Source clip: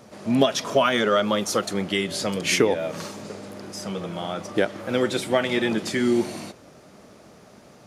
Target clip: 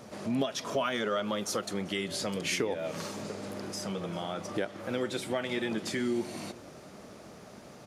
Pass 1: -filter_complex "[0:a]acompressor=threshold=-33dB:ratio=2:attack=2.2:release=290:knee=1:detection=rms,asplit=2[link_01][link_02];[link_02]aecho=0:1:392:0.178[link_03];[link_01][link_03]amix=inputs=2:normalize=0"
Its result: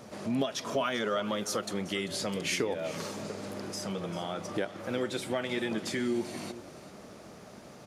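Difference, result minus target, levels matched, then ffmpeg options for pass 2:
echo-to-direct +7.5 dB
-filter_complex "[0:a]acompressor=threshold=-33dB:ratio=2:attack=2.2:release=290:knee=1:detection=rms,asplit=2[link_01][link_02];[link_02]aecho=0:1:392:0.075[link_03];[link_01][link_03]amix=inputs=2:normalize=0"

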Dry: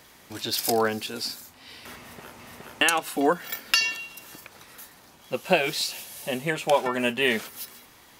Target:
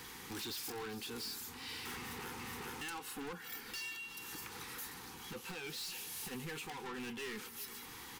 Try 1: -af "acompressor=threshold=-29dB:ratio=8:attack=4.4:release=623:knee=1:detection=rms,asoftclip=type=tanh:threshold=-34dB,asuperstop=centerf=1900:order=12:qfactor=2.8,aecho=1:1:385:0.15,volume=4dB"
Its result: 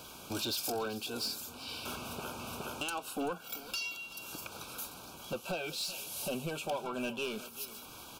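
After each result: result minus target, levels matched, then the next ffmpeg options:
soft clipping: distortion −7 dB; 2,000 Hz band −3.0 dB
-af "acompressor=threshold=-29dB:ratio=8:attack=4.4:release=623:knee=1:detection=rms,asoftclip=type=tanh:threshold=-45dB,asuperstop=centerf=1900:order=12:qfactor=2.8,aecho=1:1:385:0.15,volume=4dB"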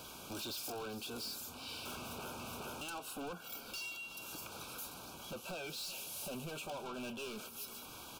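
2,000 Hz band −2.5 dB
-af "acompressor=threshold=-29dB:ratio=8:attack=4.4:release=623:knee=1:detection=rms,asoftclip=type=tanh:threshold=-45dB,asuperstop=centerf=620:order=12:qfactor=2.8,aecho=1:1:385:0.15,volume=4dB"

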